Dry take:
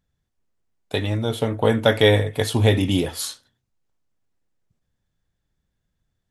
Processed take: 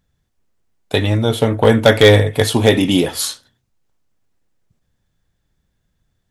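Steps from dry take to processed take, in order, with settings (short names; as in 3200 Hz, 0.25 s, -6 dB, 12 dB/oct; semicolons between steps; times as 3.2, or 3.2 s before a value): 2.52–3.15 bell 91 Hz -12 dB 0.66 oct; hard clip -9 dBFS, distortion -18 dB; gain +7.5 dB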